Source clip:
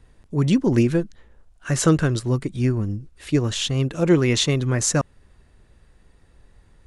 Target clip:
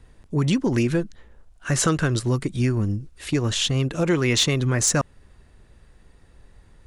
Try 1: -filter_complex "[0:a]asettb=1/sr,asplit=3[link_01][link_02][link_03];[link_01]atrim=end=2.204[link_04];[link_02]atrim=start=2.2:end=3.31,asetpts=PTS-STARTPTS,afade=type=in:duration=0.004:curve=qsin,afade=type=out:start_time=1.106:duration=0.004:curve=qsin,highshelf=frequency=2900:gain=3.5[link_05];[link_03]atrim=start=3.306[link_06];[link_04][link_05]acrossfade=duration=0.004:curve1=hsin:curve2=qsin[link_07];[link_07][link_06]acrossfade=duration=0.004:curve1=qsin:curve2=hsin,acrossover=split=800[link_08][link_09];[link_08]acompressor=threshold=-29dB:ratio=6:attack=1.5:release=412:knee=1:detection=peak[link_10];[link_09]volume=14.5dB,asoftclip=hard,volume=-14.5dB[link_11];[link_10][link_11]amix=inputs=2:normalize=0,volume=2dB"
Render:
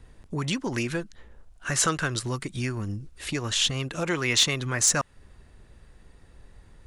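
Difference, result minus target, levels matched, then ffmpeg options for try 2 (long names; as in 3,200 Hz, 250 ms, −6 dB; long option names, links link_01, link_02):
downward compressor: peak gain reduction +9 dB
-filter_complex "[0:a]asettb=1/sr,asplit=3[link_01][link_02][link_03];[link_01]atrim=end=2.204[link_04];[link_02]atrim=start=2.2:end=3.31,asetpts=PTS-STARTPTS,afade=type=in:duration=0.004:curve=qsin,afade=type=out:start_time=1.106:duration=0.004:curve=qsin,highshelf=frequency=2900:gain=3.5[link_05];[link_03]atrim=start=3.306[link_06];[link_04][link_05]acrossfade=duration=0.004:curve1=hsin:curve2=qsin[link_07];[link_07][link_06]acrossfade=duration=0.004:curve1=qsin:curve2=hsin,acrossover=split=800[link_08][link_09];[link_08]acompressor=threshold=-18dB:ratio=6:attack=1.5:release=412:knee=1:detection=peak[link_10];[link_09]volume=14.5dB,asoftclip=hard,volume=-14.5dB[link_11];[link_10][link_11]amix=inputs=2:normalize=0,volume=2dB"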